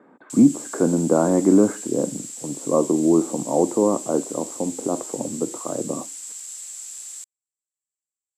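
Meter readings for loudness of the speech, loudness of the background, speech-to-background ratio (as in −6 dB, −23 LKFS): −21.5 LKFS, −33.5 LKFS, 12.0 dB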